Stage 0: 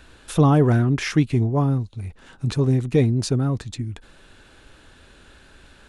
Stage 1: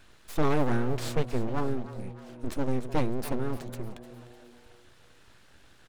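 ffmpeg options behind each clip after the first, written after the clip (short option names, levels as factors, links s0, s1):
-filter_complex "[0:a]aeval=exprs='abs(val(0))':c=same,asplit=5[s0][s1][s2][s3][s4];[s1]adelay=302,afreqshift=120,volume=0.168[s5];[s2]adelay=604,afreqshift=240,volume=0.0785[s6];[s3]adelay=906,afreqshift=360,volume=0.0372[s7];[s4]adelay=1208,afreqshift=480,volume=0.0174[s8];[s0][s5][s6][s7][s8]amix=inputs=5:normalize=0,volume=0.473"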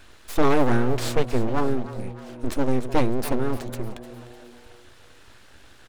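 -af "equalizer=f=160:t=o:w=0.27:g=-14,volume=2.24"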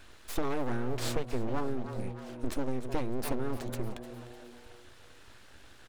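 -af "acompressor=threshold=0.0891:ratio=12,volume=0.631"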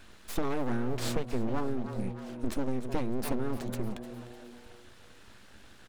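-af "equalizer=f=200:w=3:g=8.5"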